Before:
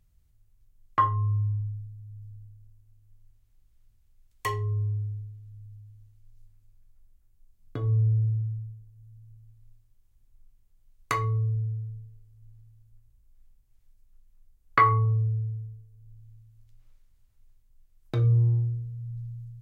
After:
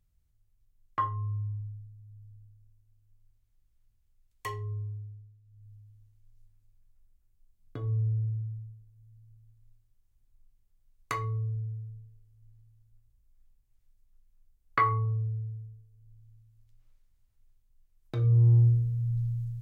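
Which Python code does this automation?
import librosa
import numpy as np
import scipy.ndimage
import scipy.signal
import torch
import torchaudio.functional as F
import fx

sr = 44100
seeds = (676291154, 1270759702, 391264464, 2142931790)

y = fx.gain(x, sr, db=fx.line((4.73, -7.0), (5.43, -15.0), (5.69, -5.5), (18.15, -5.5), (18.67, 7.0)))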